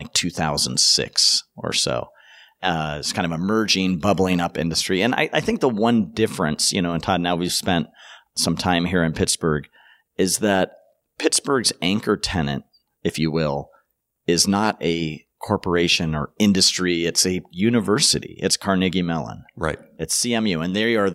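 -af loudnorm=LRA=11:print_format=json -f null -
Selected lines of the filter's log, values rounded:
"input_i" : "-20.5",
"input_tp" : "-3.1",
"input_lra" : "2.4",
"input_thresh" : "-30.8",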